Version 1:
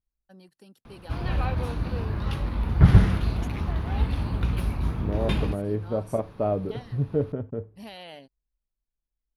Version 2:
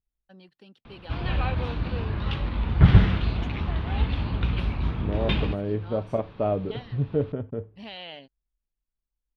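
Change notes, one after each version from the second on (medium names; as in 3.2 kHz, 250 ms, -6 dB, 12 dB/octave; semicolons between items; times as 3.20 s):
master: add resonant low-pass 3.3 kHz, resonance Q 2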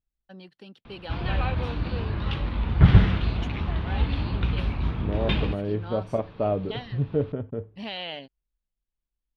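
first voice +5.5 dB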